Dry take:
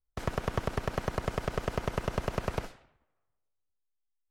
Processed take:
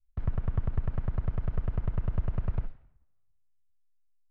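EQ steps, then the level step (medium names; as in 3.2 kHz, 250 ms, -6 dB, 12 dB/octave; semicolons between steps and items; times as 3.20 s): tape spacing loss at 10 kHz 44 dB; tilt EQ -2.5 dB/octave; peaking EQ 440 Hz -12.5 dB 2.7 oct; 0.0 dB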